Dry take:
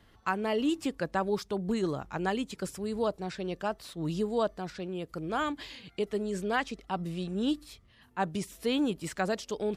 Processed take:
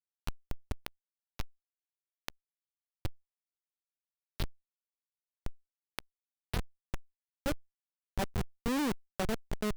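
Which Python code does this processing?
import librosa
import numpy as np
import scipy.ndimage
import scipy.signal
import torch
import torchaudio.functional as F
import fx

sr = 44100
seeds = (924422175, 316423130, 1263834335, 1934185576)

y = fx.wiener(x, sr, points=15)
y = fx.filter_sweep_highpass(y, sr, from_hz=4000.0, to_hz=74.0, start_s=6.73, end_s=8.27, q=6.6)
y = fx.quant_dither(y, sr, seeds[0], bits=6, dither='none')
y = fx.schmitt(y, sr, flips_db=-28.5)
y = fx.env_flatten(y, sr, amount_pct=50)
y = y * 10.0 ** (7.0 / 20.0)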